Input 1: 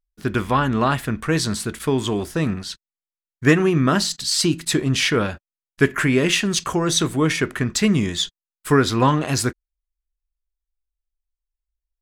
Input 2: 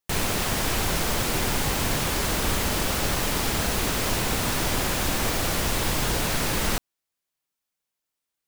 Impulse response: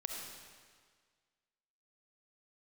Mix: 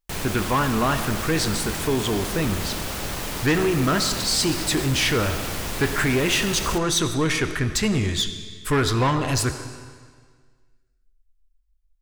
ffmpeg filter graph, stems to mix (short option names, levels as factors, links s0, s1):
-filter_complex "[0:a]asubboost=boost=8:cutoff=62,volume=0.75,asplit=2[s0][s1];[s1]volume=0.596[s2];[1:a]volume=0.631[s3];[2:a]atrim=start_sample=2205[s4];[s2][s4]afir=irnorm=-1:irlink=0[s5];[s0][s3][s5]amix=inputs=3:normalize=0,asoftclip=type=tanh:threshold=0.178"